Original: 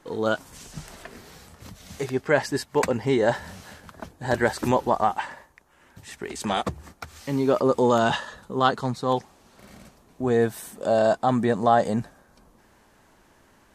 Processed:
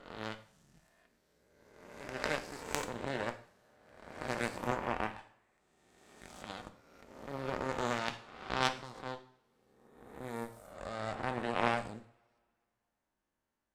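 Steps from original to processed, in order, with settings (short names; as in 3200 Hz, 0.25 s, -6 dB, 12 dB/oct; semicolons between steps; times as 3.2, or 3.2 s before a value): spectral swells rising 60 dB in 1.96 s; added harmonics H 3 -10 dB, 6 -31 dB, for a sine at -1.5 dBFS; two-slope reverb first 0.5 s, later 2.1 s, from -26 dB, DRR 7.5 dB; gain -7.5 dB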